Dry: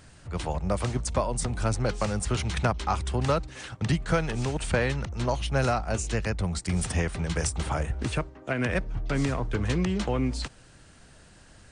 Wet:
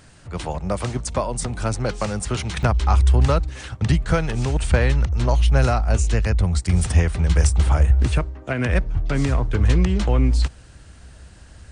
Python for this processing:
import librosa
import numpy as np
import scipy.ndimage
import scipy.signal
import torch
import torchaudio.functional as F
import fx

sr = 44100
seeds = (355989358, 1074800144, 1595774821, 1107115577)

y = fx.peak_eq(x, sr, hz=64.0, db=fx.steps((0.0, -2.5), (2.63, 14.0)), octaves=1.0)
y = y * 10.0 ** (3.5 / 20.0)